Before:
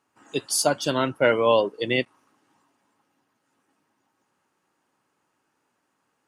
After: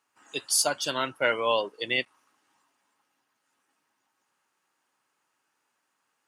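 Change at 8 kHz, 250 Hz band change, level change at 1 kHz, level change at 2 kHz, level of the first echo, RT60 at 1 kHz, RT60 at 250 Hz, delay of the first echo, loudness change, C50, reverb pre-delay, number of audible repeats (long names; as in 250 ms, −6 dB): +0.5 dB, −11.0 dB, −3.5 dB, −1.0 dB, no echo audible, no reverb audible, no reverb audible, no echo audible, −4.0 dB, no reverb audible, no reverb audible, no echo audible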